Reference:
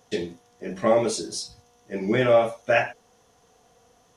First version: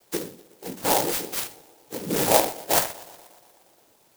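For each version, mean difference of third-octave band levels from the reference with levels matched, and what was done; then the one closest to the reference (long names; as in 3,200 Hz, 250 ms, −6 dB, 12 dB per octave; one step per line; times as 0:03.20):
11.5 dB: spectral tilt +2 dB per octave
cochlear-implant simulation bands 8
tape delay 120 ms, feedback 70%, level −18.5 dB, low-pass 3,500 Hz
converter with an unsteady clock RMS 0.15 ms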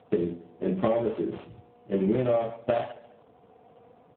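7.5 dB: running median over 25 samples
downward compressor 16 to 1, threshold −28 dBFS, peak gain reduction 15 dB
repeating echo 138 ms, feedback 36%, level −18.5 dB
level +7.5 dB
AMR narrowband 7.4 kbit/s 8,000 Hz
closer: second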